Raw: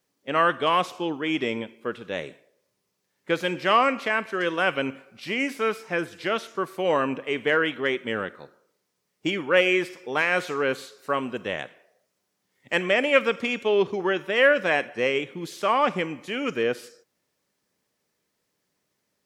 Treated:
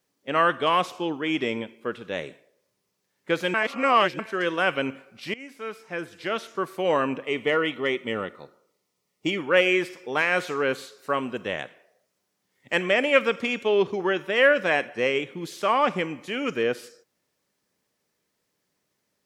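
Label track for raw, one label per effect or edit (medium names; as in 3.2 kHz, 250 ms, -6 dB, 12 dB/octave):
3.540000	4.190000	reverse
5.340000	6.640000	fade in, from -19.5 dB
7.250000	9.380000	Butterworth band-stop 1.6 kHz, Q 5.5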